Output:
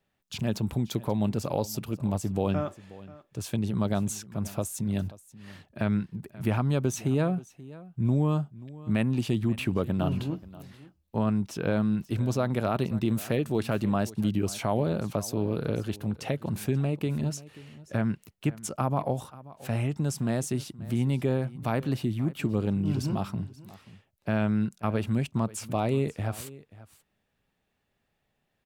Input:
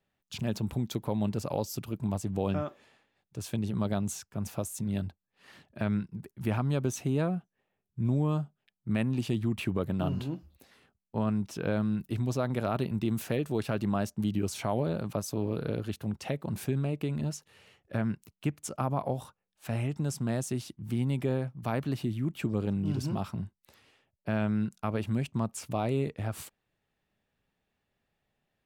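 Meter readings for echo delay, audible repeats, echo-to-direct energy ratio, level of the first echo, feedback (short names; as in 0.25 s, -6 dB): 0.533 s, 1, -19.0 dB, -19.0 dB, no steady repeat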